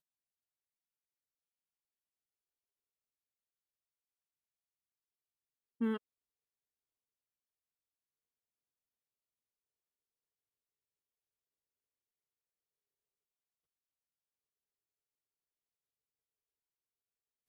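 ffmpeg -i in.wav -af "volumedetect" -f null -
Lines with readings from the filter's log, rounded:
mean_volume: -52.7 dB
max_volume: -25.4 dB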